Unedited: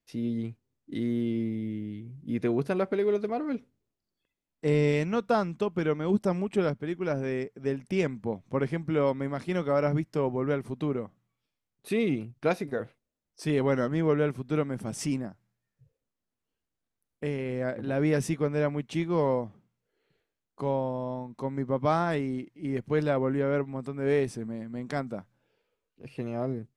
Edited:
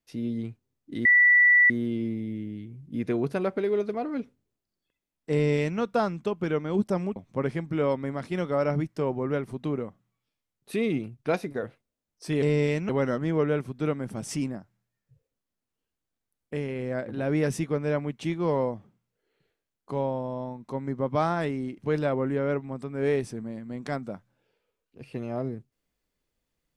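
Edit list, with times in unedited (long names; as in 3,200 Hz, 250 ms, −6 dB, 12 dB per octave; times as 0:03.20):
0:01.05: insert tone 1,960 Hz −14.5 dBFS 0.65 s
0:04.67–0:05.14: duplicate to 0:13.59
0:06.51–0:08.33: remove
0:22.48–0:22.82: remove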